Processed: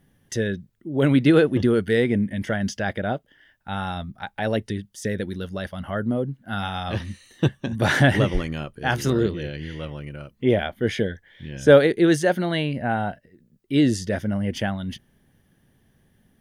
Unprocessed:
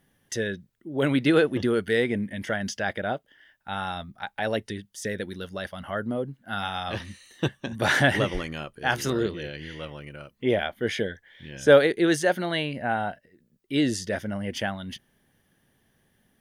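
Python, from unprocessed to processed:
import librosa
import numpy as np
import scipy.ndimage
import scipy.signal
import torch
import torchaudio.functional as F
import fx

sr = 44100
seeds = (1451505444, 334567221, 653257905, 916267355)

y = fx.low_shelf(x, sr, hz=320.0, db=9.5)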